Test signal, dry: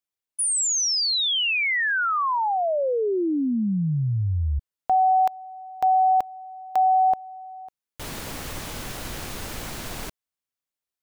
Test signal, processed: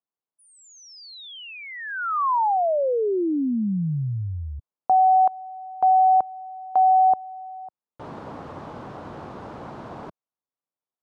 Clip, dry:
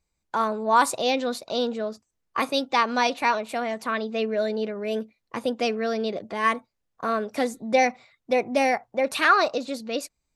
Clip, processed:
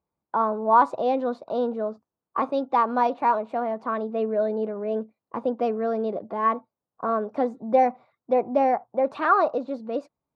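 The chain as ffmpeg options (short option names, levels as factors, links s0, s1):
-af "highpass=120,lowpass=3100,highshelf=f=1500:t=q:w=1.5:g=-11.5"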